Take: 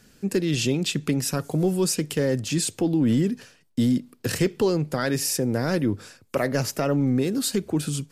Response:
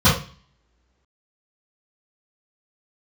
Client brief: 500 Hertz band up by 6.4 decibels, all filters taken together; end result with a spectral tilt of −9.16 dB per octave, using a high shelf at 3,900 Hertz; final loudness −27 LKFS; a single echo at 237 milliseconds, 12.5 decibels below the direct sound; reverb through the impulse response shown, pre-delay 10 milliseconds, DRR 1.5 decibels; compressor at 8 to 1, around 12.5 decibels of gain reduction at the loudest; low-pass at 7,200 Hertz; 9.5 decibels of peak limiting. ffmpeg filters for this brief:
-filter_complex "[0:a]lowpass=7200,equalizer=frequency=500:width_type=o:gain=8.5,highshelf=frequency=3900:gain=-8.5,acompressor=threshold=-26dB:ratio=8,alimiter=level_in=0.5dB:limit=-24dB:level=0:latency=1,volume=-0.5dB,aecho=1:1:237:0.237,asplit=2[link_01][link_02];[1:a]atrim=start_sample=2205,adelay=10[link_03];[link_02][link_03]afir=irnorm=-1:irlink=0,volume=-24dB[link_04];[link_01][link_04]amix=inputs=2:normalize=0,volume=0.5dB"

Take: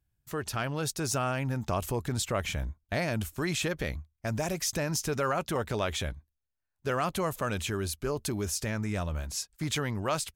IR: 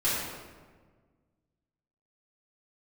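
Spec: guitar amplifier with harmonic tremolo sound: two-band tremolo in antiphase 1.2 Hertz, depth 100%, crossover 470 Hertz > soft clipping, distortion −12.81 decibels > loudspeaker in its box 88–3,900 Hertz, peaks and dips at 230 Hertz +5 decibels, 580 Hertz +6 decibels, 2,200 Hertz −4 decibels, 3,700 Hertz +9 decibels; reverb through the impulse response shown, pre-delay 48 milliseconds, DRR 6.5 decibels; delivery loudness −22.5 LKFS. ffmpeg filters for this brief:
-filter_complex "[0:a]asplit=2[link_01][link_02];[1:a]atrim=start_sample=2205,adelay=48[link_03];[link_02][link_03]afir=irnorm=-1:irlink=0,volume=-17.5dB[link_04];[link_01][link_04]amix=inputs=2:normalize=0,acrossover=split=470[link_05][link_06];[link_05]aeval=exprs='val(0)*(1-1/2+1/2*cos(2*PI*1.2*n/s))':channel_layout=same[link_07];[link_06]aeval=exprs='val(0)*(1-1/2-1/2*cos(2*PI*1.2*n/s))':channel_layout=same[link_08];[link_07][link_08]amix=inputs=2:normalize=0,asoftclip=threshold=-30dB,highpass=88,equalizer=frequency=230:width_type=q:width=4:gain=5,equalizer=frequency=580:width_type=q:width=4:gain=6,equalizer=frequency=2200:width_type=q:width=4:gain=-4,equalizer=frequency=3700:width_type=q:width=4:gain=9,lowpass=frequency=3900:width=0.5412,lowpass=frequency=3900:width=1.3066,volume=15dB"

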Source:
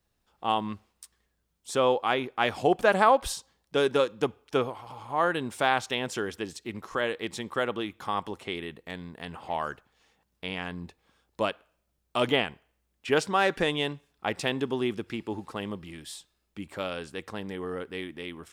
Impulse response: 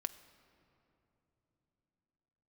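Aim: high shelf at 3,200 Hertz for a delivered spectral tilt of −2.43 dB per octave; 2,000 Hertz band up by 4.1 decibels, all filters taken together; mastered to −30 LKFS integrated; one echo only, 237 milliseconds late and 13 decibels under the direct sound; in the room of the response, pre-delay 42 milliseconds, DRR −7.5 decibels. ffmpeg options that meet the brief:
-filter_complex "[0:a]equalizer=frequency=2000:width_type=o:gain=8,highshelf=frequency=3200:gain=-8,aecho=1:1:237:0.224,asplit=2[link_01][link_02];[1:a]atrim=start_sample=2205,adelay=42[link_03];[link_02][link_03]afir=irnorm=-1:irlink=0,volume=8.5dB[link_04];[link_01][link_04]amix=inputs=2:normalize=0,volume=-10.5dB"

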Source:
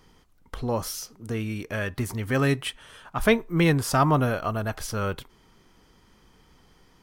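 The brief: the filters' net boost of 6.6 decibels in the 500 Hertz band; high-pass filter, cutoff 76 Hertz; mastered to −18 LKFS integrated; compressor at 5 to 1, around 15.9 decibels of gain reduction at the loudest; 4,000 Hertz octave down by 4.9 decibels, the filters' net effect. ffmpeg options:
ffmpeg -i in.wav -af "highpass=76,equalizer=frequency=500:width_type=o:gain=8,equalizer=frequency=4000:width_type=o:gain=-7,acompressor=threshold=-29dB:ratio=5,volume=15.5dB" out.wav

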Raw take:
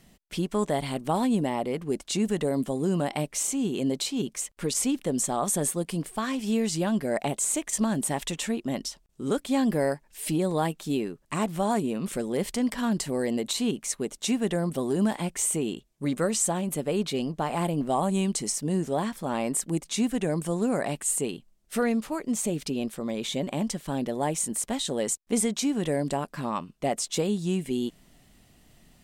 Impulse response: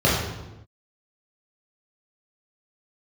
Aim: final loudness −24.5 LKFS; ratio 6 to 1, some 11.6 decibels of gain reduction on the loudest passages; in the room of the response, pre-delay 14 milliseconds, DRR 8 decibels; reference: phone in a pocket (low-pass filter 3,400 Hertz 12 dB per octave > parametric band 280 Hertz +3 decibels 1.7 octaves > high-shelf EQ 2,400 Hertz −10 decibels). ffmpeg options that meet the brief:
-filter_complex "[0:a]acompressor=threshold=-34dB:ratio=6,asplit=2[link_01][link_02];[1:a]atrim=start_sample=2205,adelay=14[link_03];[link_02][link_03]afir=irnorm=-1:irlink=0,volume=-28dB[link_04];[link_01][link_04]amix=inputs=2:normalize=0,lowpass=3400,equalizer=frequency=280:width_type=o:width=1.7:gain=3,highshelf=frequency=2400:gain=-10,volume=10.5dB"

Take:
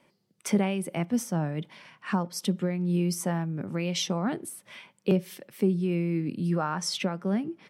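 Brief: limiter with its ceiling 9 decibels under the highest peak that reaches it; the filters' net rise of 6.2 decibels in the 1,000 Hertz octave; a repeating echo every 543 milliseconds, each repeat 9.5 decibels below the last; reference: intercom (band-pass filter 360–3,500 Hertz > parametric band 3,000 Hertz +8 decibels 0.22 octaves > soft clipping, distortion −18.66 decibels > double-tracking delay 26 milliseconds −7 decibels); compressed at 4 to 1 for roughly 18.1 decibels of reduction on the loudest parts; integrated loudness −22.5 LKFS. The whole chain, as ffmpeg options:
ffmpeg -i in.wav -filter_complex "[0:a]equalizer=frequency=1000:width_type=o:gain=8,acompressor=threshold=-41dB:ratio=4,alimiter=level_in=9dB:limit=-24dB:level=0:latency=1,volume=-9dB,highpass=360,lowpass=3500,equalizer=frequency=3000:width_type=o:width=0.22:gain=8,aecho=1:1:543|1086|1629|2172:0.335|0.111|0.0365|0.012,asoftclip=threshold=-37dB,asplit=2[link_01][link_02];[link_02]adelay=26,volume=-7dB[link_03];[link_01][link_03]amix=inputs=2:normalize=0,volume=25dB" out.wav

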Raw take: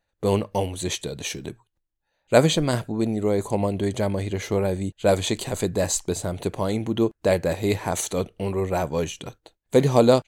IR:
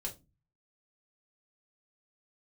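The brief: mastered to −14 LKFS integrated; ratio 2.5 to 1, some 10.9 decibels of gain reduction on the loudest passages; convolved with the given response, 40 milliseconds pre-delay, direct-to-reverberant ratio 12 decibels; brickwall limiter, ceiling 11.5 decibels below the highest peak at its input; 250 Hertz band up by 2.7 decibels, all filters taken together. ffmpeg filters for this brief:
-filter_complex "[0:a]equalizer=frequency=250:width_type=o:gain=3.5,acompressor=threshold=-27dB:ratio=2.5,alimiter=level_in=0.5dB:limit=-24dB:level=0:latency=1,volume=-0.5dB,asplit=2[link_01][link_02];[1:a]atrim=start_sample=2205,adelay=40[link_03];[link_02][link_03]afir=irnorm=-1:irlink=0,volume=-11dB[link_04];[link_01][link_04]amix=inputs=2:normalize=0,volume=19.5dB"

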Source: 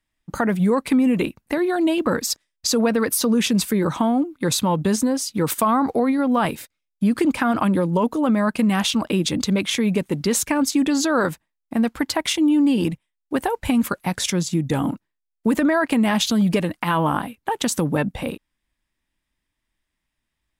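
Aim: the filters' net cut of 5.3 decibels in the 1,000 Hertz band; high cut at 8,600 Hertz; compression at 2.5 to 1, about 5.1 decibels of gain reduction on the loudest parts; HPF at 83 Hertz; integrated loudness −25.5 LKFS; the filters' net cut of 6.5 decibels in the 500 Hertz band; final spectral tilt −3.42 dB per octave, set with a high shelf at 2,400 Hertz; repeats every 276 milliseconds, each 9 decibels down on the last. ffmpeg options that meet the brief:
ffmpeg -i in.wav -af "highpass=83,lowpass=8600,equalizer=frequency=500:width_type=o:gain=-7.5,equalizer=frequency=1000:width_type=o:gain=-6,highshelf=frequency=2400:gain=8,acompressor=threshold=-22dB:ratio=2.5,aecho=1:1:276|552|828|1104:0.355|0.124|0.0435|0.0152,volume=-1dB" out.wav

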